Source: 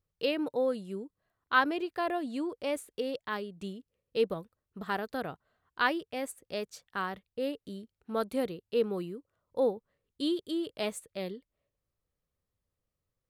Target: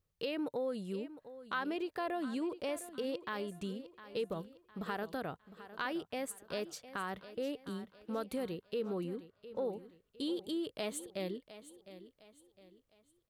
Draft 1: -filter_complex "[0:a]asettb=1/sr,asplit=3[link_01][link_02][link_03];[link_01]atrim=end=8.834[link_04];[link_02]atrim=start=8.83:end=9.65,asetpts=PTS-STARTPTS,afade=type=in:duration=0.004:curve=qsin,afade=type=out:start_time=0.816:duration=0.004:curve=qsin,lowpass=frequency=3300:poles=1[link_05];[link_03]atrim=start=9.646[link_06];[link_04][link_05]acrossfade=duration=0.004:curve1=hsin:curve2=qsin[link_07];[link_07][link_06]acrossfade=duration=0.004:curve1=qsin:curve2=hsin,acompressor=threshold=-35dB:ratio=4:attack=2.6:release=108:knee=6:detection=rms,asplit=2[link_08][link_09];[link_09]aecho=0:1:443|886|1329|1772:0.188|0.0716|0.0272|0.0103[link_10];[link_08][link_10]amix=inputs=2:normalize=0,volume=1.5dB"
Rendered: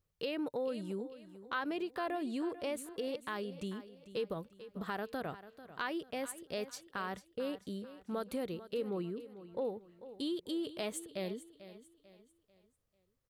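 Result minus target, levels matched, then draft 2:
echo 265 ms early
-filter_complex "[0:a]asettb=1/sr,asplit=3[link_01][link_02][link_03];[link_01]atrim=end=8.834[link_04];[link_02]atrim=start=8.83:end=9.65,asetpts=PTS-STARTPTS,afade=type=in:duration=0.004:curve=qsin,afade=type=out:start_time=0.816:duration=0.004:curve=qsin,lowpass=frequency=3300:poles=1[link_05];[link_03]atrim=start=9.646[link_06];[link_04][link_05]acrossfade=duration=0.004:curve1=hsin:curve2=qsin[link_07];[link_07][link_06]acrossfade=duration=0.004:curve1=qsin:curve2=hsin,acompressor=threshold=-35dB:ratio=4:attack=2.6:release=108:knee=6:detection=rms,asplit=2[link_08][link_09];[link_09]aecho=0:1:708|1416|2124|2832:0.188|0.0716|0.0272|0.0103[link_10];[link_08][link_10]amix=inputs=2:normalize=0,volume=1.5dB"

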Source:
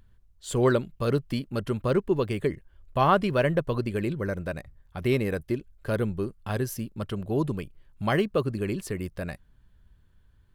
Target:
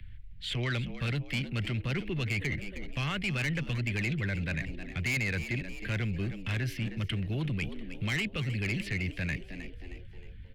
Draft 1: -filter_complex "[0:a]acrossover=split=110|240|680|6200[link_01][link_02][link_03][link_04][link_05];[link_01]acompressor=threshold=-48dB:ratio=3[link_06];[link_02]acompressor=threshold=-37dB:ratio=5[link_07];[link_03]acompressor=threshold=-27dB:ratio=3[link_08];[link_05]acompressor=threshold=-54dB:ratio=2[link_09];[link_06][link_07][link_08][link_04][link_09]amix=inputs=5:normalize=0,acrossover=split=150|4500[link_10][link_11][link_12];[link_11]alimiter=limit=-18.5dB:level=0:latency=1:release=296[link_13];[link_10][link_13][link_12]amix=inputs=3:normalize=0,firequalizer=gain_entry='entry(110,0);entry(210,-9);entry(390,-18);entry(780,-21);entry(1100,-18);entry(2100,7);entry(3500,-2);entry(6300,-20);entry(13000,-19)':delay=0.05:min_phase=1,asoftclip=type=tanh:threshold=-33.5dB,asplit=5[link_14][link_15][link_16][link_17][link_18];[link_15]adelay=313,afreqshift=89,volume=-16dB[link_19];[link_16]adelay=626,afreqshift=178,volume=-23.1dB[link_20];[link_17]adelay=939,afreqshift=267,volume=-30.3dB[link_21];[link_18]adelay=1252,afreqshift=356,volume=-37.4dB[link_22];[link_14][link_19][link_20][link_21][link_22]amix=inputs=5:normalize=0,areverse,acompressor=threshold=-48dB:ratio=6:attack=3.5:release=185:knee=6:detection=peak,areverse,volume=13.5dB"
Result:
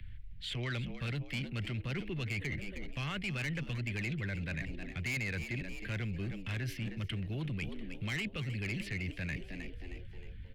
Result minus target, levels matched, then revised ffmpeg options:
downward compressor: peak gain reduction +5.5 dB
-filter_complex "[0:a]acrossover=split=110|240|680|6200[link_01][link_02][link_03][link_04][link_05];[link_01]acompressor=threshold=-48dB:ratio=3[link_06];[link_02]acompressor=threshold=-37dB:ratio=5[link_07];[link_03]acompressor=threshold=-27dB:ratio=3[link_08];[link_05]acompressor=threshold=-54dB:ratio=2[link_09];[link_06][link_07][link_08][link_04][link_09]amix=inputs=5:normalize=0,acrossover=split=150|4500[link_10][link_11][link_12];[link_11]alimiter=limit=-18.5dB:level=0:latency=1:release=296[link_13];[link_10][link_13][link_12]amix=inputs=3:normalize=0,firequalizer=gain_entry='entry(110,0);entry(210,-9);entry(390,-18);entry(780,-21);entry(1100,-18);entry(2100,7);entry(3500,-2);entry(6300,-20);entry(13000,-19)':delay=0.05:min_phase=1,asoftclip=type=tanh:threshold=-33.5dB,asplit=5[link_14][link_15][link_16][link_17][link_18];[link_15]adelay=313,afreqshift=89,volume=-16dB[link_19];[link_16]adelay=626,afreqshift=178,volume=-23.1dB[link_20];[link_17]adelay=939,afreqshift=267,volume=-30.3dB[link_21];[link_18]adelay=1252,afreqshift=356,volume=-37.4dB[link_22];[link_14][link_19][link_20][link_21][link_22]amix=inputs=5:normalize=0,areverse,acompressor=threshold=-41.5dB:ratio=6:attack=3.5:release=185:knee=6:detection=peak,areverse,volume=13.5dB"

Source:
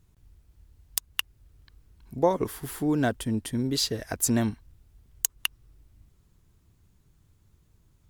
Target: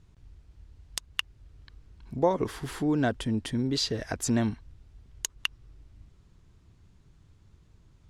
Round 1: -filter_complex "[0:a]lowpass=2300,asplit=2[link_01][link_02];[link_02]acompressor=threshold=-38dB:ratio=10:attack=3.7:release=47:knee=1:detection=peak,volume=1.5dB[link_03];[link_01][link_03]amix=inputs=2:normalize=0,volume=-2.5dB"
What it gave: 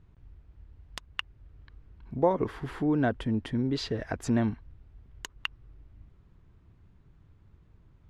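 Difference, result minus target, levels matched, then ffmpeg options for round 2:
8,000 Hz band −12.0 dB
-filter_complex "[0:a]lowpass=5800,asplit=2[link_01][link_02];[link_02]acompressor=threshold=-38dB:ratio=10:attack=3.7:release=47:knee=1:detection=peak,volume=1.5dB[link_03];[link_01][link_03]amix=inputs=2:normalize=0,volume=-2.5dB"

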